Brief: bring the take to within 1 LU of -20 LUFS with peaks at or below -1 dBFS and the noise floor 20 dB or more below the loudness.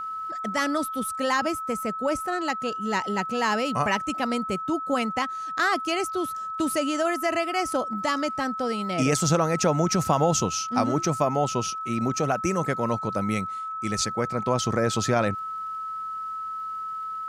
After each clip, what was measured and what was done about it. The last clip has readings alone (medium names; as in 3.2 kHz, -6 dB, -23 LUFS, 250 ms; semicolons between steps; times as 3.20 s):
tick rate 35 per s; steady tone 1.3 kHz; tone level -30 dBFS; loudness -26.0 LUFS; peak level -8.5 dBFS; loudness target -20.0 LUFS
-> de-click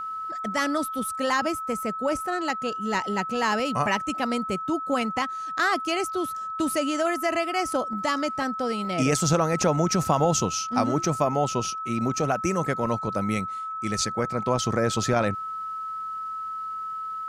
tick rate 0.058 per s; steady tone 1.3 kHz; tone level -30 dBFS
-> band-stop 1.3 kHz, Q 30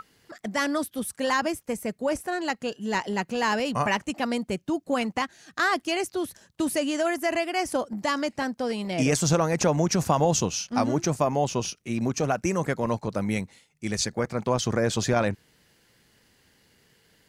steady tone not found; loudness -26.5 LUFS; peak level -9.0 dBFS; loudness target -20.0 LUFS
-> trim +6.5 dB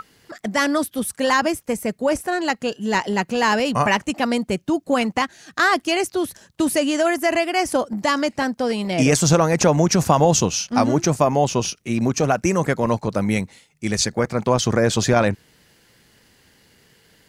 loudness -20.0 LUFS; peak level -2.5 dBFS; noise floor -58 dBFS